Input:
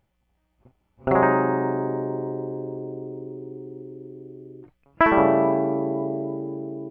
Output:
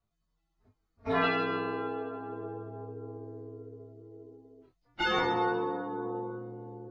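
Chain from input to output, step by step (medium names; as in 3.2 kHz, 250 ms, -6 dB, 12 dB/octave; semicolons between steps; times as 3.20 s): frequency axis rescaled in octaves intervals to 129%; chorus 0.3 Hz, delay 18.5 ms, depth 5.1 ms; trim -4 dB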